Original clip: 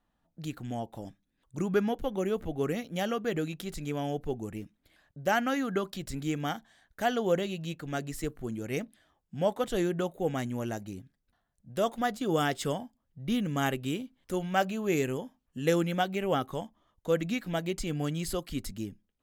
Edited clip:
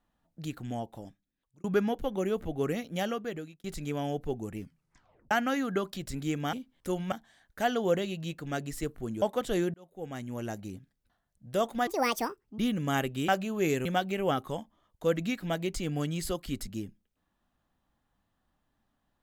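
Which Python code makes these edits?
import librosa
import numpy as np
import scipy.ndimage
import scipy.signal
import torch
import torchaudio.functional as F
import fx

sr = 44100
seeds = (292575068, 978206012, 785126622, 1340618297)

y = fx.edit(x, sr, fx.fade_out_span(start_s=0.76, length_s=0.88),
    fx.fade_out_span(start_s=3.01, length_s=0.63),
    fx.tape_stop(start_s=4.58, length_s=0.73),
    fx.cut(start_s=8.63, length_s=0.82),
    fx.fade_in_span(start_s=9.97, length_s=0.89),
    fx.speed_span(start_s=12.1, length_s=1.17, speed=1.64),
    fx.move(start_s=13.97, length_s=0.59, to_s=6.53),
    fx.cut(start_s=15.13, length_s=0.76), tone=tone)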